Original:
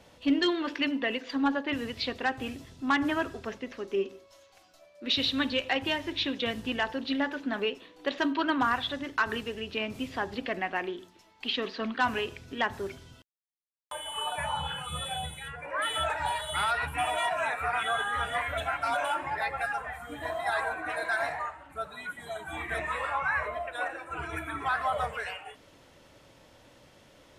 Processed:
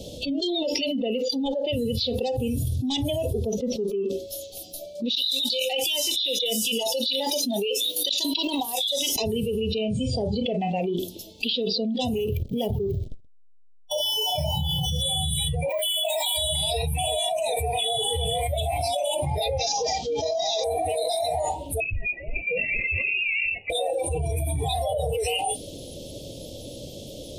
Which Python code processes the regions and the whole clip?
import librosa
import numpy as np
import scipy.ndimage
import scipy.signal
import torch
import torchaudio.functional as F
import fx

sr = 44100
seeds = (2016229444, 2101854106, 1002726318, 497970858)

y = fx.chain(x, sr, fx.highpass(hz=1000.0, slope=6),
    fx.high_shelf(hz=4600.0, db=8.0),
    fx.over_compress(threshold_db=-38.0, ratio=-1.0), at=(5.15, 9.16))
y = fx.chain(y, sr, fx.brickwall_lowpass(high_hz=9200.0),
    fx.doubler(ms=34.0, db=-10.5), at=(9.72, 10.81))
y = fx.chain(y, sr, fx.backlash(play_db=-37.5),
    fx.echo_single(ms=128, db=-22.0),
    fx.resample_linear(factor=3), at=(12.15, 15.02))
y = fx.chain(y, sr, fx.highpass(hz=990.0, slope=12),
    fx.comb(ms=3.0, depth=0.86),
    fx.resample_linear(factor=2), at=(15.69, 16.37))
y = fx.chain(y, sr, fx.cvsd(bps=32000),
    fx.highpass(hz=200.0, slope=6),
    fx.notch(hz=720.0, q=8.0), at=(19.58, 20.64))
y = fx.chain(y, sr, fx.steep_highpass(hz=1200.0, slope=96),
    fx.freq_invert(carrier_hz=3900), at=(21.8, 23.7))
y = fx.noise_reduce_blind(y, sr, reduce_db=20)
y = scipy.signal.sosfilt(scipy.signal.cheby1(3, 1.0, [580.0, 3400.0], 'bandstop', fs=sr, output='sos'), y)
y = fx.env_flatten(y, sr, amount_pct=100)